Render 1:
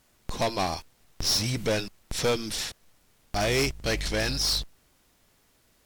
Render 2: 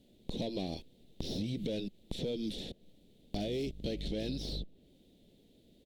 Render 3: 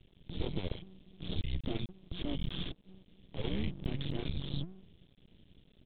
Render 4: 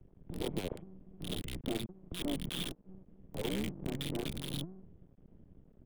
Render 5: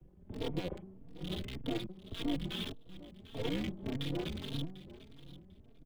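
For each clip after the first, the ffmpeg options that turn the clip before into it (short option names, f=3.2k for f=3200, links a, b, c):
-filter_complex "[0:a]firequalizer=gain_entry='entry(110,0);entry(190,10);entry(540,4);entry(1100,-27);entry(2000,-14);entry(3600,3);entry(5200,-13)':delay=0.05:min_phase=1,alimiter=limit=-17.5dB:level=0:latency=1:release=122,acrossover=split=1200|3100[a][b][c];[a]acompressor=threshold=-35dB:ratio=4[d];[b]acompressor=threshold=-52dB:ratio=4[e];[c]acompressor=threshold=-50dB:ratio=4[f];[d][e][f]amix=inputs=3:normalize=0"
-af "alimiter=level_in=5dB:limit=-24dB:level=0:latency=1:release=137,volume=-5dB,afreqshift=-190,aresample=8000,aeval=exprs='max(val(0),0)':c=same,aresample=44100,volume=6.5dB"
-filter_complex "[0:a]acrossover=split=180|650|1400[a][b][c][d];[a]acompressor=threshold=-44dB:ratio=6[e];[d]acrusher=bits=6:mix=0:aa=0.000001[f];[e][b][c][f]amix=inputs=4:normalize=0,volume=3dB"
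-filter_complex "[0:a]acrossover=split=130|960|6000[a][b][c][d];[d]aeval=exprs='(mod(316*val(0)+1,2)-1)/316':c=same[e];[a][b][c][e]amix=inputs=4:normalize=0,aecho=1:1:746|1492:0.15|0.0269,asplit=2[f][g];[g]adelay=3.7,afreqshift=1.7[h];[f][h]amix=inputs=2:normalize=1,volume=3dB"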